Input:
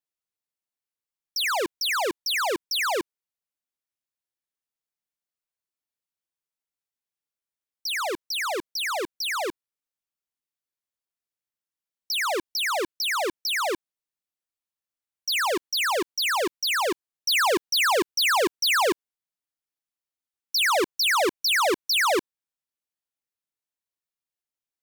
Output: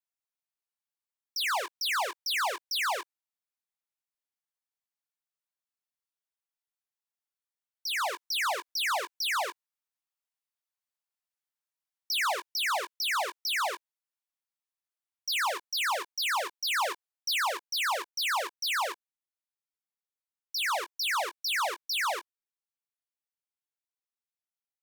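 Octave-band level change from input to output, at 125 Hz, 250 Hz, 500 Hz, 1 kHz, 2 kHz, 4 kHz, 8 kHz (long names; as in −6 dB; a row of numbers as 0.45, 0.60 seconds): can't be measured, −23.0 dB, −11.0 dB, −4.0 dB, −5.0 dB, −5.5 dB, −6.0 dB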